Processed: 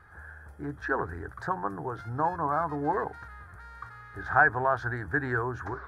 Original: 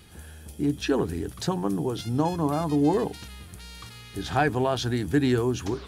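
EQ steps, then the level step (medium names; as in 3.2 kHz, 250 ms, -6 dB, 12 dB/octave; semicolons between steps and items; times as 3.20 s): FFT filter 110 Hz 0 dB, 220 Hz -11 dB, 1.6 kHz +15 dB, 2.8 kHz -20 dB, 4.3 kHz -16 dB, 7 kHz -18 dB; -5.0 dB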